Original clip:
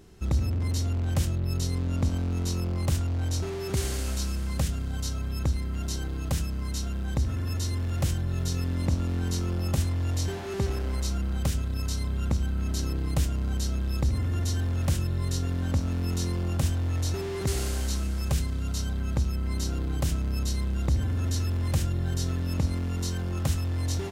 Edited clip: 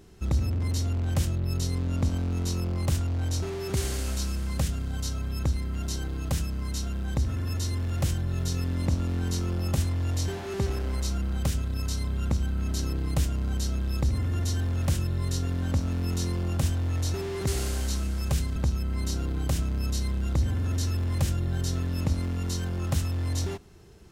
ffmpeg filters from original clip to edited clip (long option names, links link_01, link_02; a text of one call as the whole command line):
ffmpeg -i in.wav -filter_complex "[0:a]asplit=2[link_01][link_02];[link_01]atrim=end=18.562[link_03];[link_02]atrim=start=19.088[link_04];[link_03][link_04]acrossfade=duration=0.004:curve1=hsin:curve2=hsin" out.wav